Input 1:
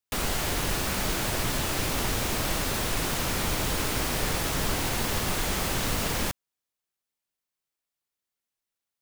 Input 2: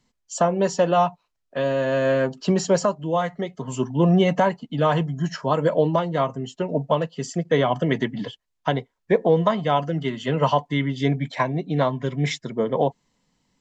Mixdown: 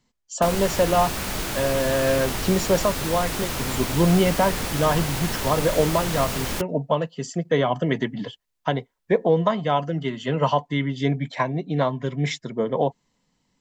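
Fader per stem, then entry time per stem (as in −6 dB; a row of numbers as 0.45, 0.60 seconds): 0.0, −1.0 decibels; 0.30, 0.00 seconds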